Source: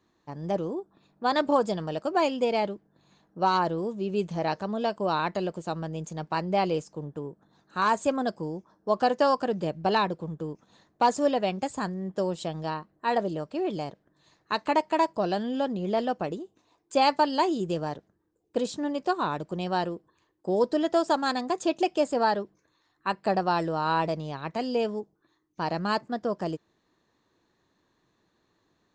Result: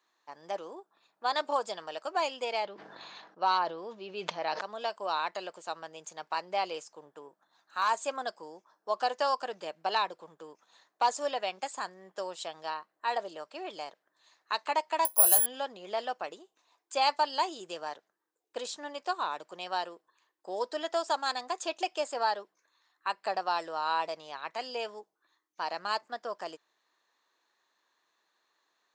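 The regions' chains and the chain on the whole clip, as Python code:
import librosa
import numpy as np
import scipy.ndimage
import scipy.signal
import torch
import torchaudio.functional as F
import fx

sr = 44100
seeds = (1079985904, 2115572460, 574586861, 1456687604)

y = fx.chain(x, sr, fx.lowpass(hz=5100.0, slope=24),
    fx.low_shelf(hz=160.0, db=8.5),
    fx.sustainer(db_per_s=27.0), at=(2.65, 4.61))
y = fx.chain(y, sr, fx.median_filter(points=3),
    fx.peak_eq(hz=430.0, db=-10.0, octaves=0.26), at=(7.28, 7.89))
y = fx.chain(y, sr, fx.resample_bad(factor=4, down='none', up='zero_stuff'),
    fx.doubler(ms=17.0, db=-10.5), at=(15.05, 15.46))
y = scipy.signal.sosfilt(scipy.signal.butter(2, 850.0, 'highpass', fs=sr, output='sos'), y)
y = fx.dynamic_eq(y, sr, hz=1700.0, q=1.1, threshold_db=-36.0, ratio=4.0, max_db=-4)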